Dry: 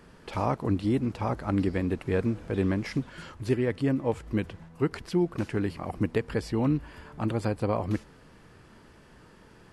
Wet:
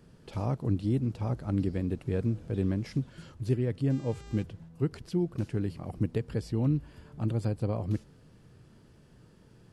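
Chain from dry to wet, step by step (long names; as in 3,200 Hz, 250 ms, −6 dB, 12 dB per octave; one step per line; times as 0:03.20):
octave-band graphic EQ 125/1,000/2,000 Hz +8/−6/−6 dB
0:03.89–0:04.42: hum with harmonics 400 Hz, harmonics 20, −49 dBFS −4 dB per octave
level −5 dB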